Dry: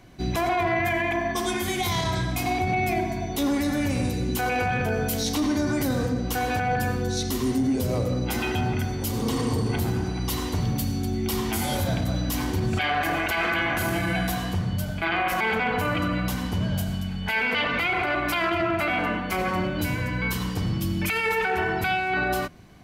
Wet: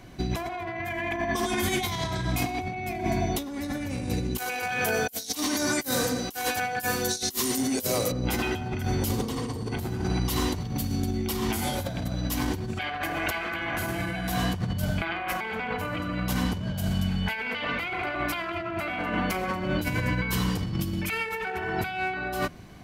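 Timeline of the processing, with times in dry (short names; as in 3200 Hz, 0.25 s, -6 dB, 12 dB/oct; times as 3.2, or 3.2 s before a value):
4.38–8.12 RIAA curve recording
whole clip: negative-ratio compressor -28 dBFS, ratio -0.5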